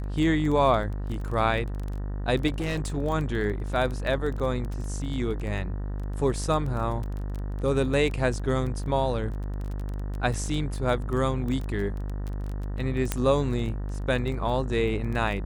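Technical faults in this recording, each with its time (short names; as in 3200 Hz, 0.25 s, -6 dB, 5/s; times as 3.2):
buzz 50 Hz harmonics 38 -31 dBFS
crackle 15/s -30 dBFS
2.47–2.98 clipped -24.5 dBFS
13.12 pop -9 dBFS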